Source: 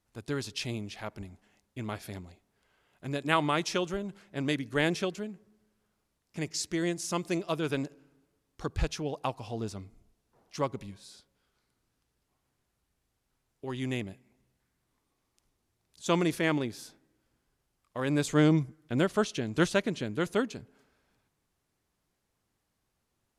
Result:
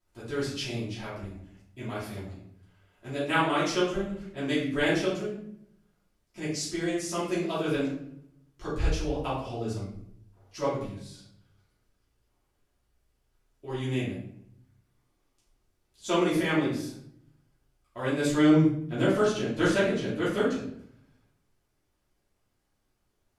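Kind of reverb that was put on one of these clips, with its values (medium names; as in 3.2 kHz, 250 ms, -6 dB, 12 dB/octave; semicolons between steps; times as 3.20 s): simulated room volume 120 m³, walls mixed, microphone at 2.9 m; trim -9 dB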